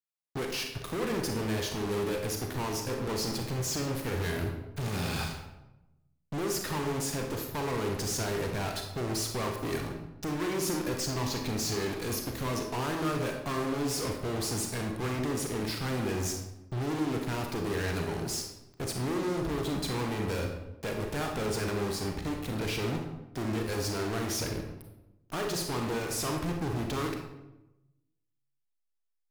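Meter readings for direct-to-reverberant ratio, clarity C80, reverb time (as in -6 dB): 2.5 dB, 7.0 dB, 0.95 s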